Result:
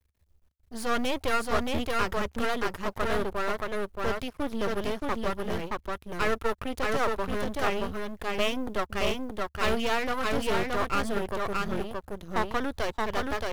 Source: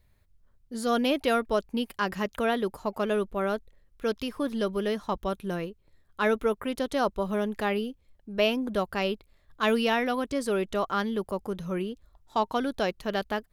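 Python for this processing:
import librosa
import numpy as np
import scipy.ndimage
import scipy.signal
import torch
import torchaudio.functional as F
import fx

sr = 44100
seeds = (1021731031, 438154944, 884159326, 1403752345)

p1 = fx.law_mismatch(x, sr, coded='A')
p2 = fx.dynamic_eq(p1, sr, hz=1300.0, q=4.1, threshold_db=-46.0, ratio=4.0, max_db=7)
p3 = p2 + fx.echo_single(p2, sr, ms=624, db=-3.0, dry=0)
p4 = np.maximum(p3, 0.0)
p5 = fx.peak_eq(p4, sr, hz=72.0, db=12.5, octaves=0.62)
p6 = np.clip(p5, -10.0 ** (-28.5 / 20.0), 10.0 ** (-28.5 / 20.0))
y = p5 + (p6 * librosa.db_to_amplitude(-5.0))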